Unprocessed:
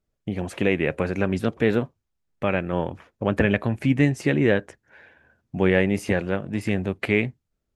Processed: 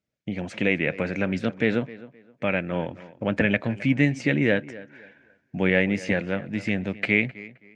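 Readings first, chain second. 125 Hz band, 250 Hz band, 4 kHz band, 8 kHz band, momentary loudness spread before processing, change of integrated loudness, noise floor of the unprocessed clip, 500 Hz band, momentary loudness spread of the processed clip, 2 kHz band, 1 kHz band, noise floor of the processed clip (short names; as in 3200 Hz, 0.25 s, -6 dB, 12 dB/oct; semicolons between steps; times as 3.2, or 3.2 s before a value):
-3.0 dB, -1.5 dB, +0.5 dB, n/a, 9 LU, -1.0 dB, -78 dBFS, -3.0 dB, 13 LU, +2.0 dB, -4.0 dB, -70 dBFS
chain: speaker cabinet 130–6800 Hz, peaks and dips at 390 Hz -7 dB, 780 Hz -4 dB, 1100 Hz -7 dB, 2200 Hz +5 dB; on a send: tape echo 0.262 s, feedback 28%, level -17 dB, low-pass 2900 Hz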